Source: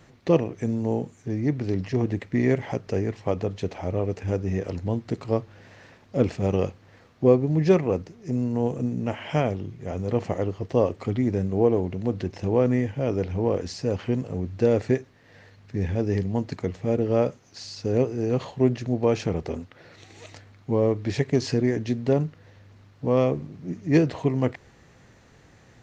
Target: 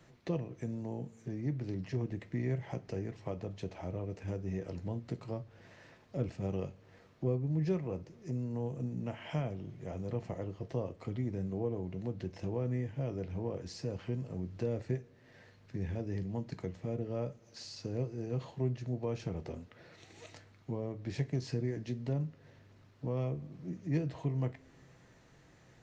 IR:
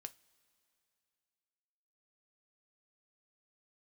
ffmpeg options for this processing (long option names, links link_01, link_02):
-filter_complex "[0:a]acrossover=split=160[link_01][link_02];[link_02]acompressor=threshold=-35dB:ratio=2[link_03];[link_01][link_03]amix=inputs=2:normalize=0[link_04];[1:a]atrim=start_sample=2205[link_05];[link_04][link_05]afir=irnorm=-1:irlink=0,volume=-2dB"